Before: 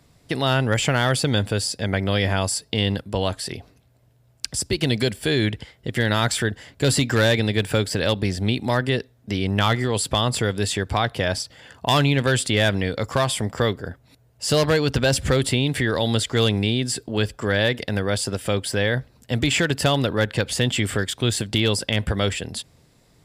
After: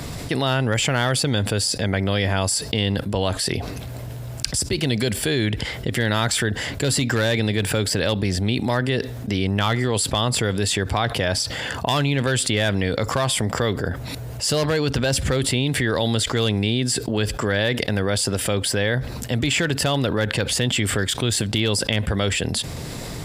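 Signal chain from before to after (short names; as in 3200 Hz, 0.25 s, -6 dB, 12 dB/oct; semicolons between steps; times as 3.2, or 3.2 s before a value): fast leveller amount 70%; gain -3.5 dB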